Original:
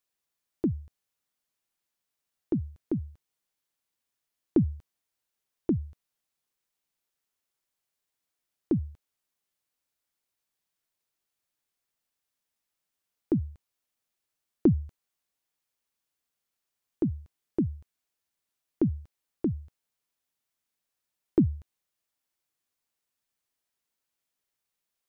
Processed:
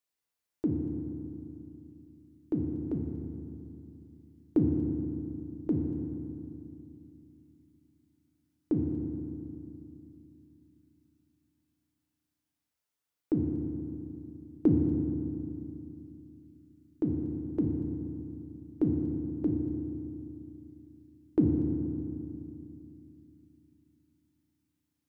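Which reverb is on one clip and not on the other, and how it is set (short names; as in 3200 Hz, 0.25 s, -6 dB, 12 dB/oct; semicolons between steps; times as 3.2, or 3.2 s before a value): FDN reverb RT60 2.7 s, low-frequency decay 1.35×, high-frequency decay 0.5×, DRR 1 dB; gain -4.5 dB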